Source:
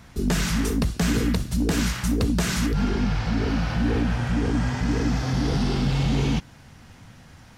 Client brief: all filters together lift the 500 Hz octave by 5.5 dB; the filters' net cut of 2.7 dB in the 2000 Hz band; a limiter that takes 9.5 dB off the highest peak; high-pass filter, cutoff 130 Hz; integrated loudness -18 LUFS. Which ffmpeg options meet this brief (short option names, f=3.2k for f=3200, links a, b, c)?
-af "highpass=130,equalizer=f=500:t=o:g=7,equalizer=f=2k:t=o:g=-4,volume=10.5dB,alimiter=limit=-9dB:level=0:latency=1"